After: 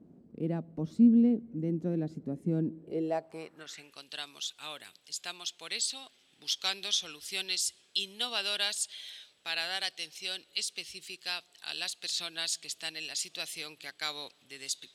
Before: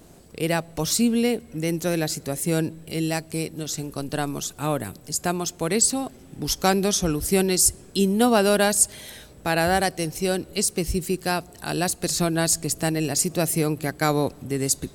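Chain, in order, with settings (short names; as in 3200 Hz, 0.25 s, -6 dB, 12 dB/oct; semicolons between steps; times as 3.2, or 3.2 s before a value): dynamic EQ 3500 Hz, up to +4 dB, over -42 dBFS, Q 3; band-pass sweep 230 Hz -> 3400 Hz, 2.64–4.04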